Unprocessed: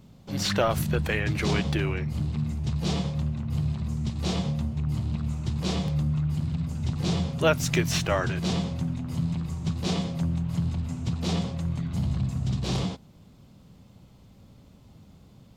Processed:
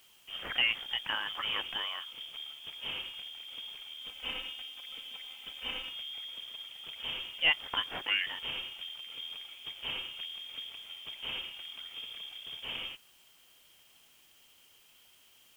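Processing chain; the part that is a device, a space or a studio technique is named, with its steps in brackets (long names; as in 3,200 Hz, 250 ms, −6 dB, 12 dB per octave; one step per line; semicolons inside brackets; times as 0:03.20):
scrambled radio voice (band-pass filter 320–2,700 Hz; voice inversion scrambler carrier 3,400 Hz; white noise bed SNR 25 dB)
0:04.01–0:05.91: comb filter 3.9 ms, depth 62%
level −4 dB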